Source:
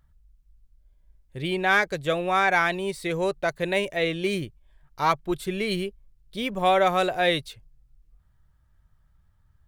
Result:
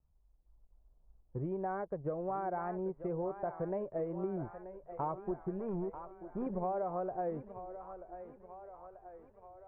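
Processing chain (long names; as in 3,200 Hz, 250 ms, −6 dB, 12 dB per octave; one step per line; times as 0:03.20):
mu-law and A-law mismatch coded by A
automatic gain control gain up to 6 dB
0:05.59–0:06.47: hard clipping −25.5 dBFS, distortion −18 dB
inverse Chebyshev low-pass filter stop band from 4,300 Hz, stop band 70 dB
downward compressor 6 to 1, threshold −30 dBFS, peak gain reduction 16.5 dB
on a send: feedback echo with a high-pass in the loop 936 ms, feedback 69%, high-pass 360 Hz, level −10 dB
on the sum: pitch vibrato 2.7 Hz 64 cents
level −4.5 dB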